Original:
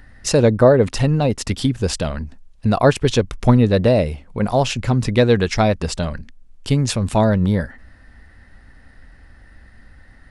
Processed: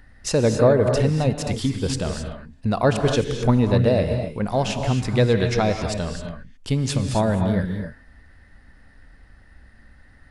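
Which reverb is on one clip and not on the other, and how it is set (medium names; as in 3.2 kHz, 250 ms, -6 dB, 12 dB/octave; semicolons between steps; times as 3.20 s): gated-style reverb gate 290 ms rising, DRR 5 dB; trim -5 dB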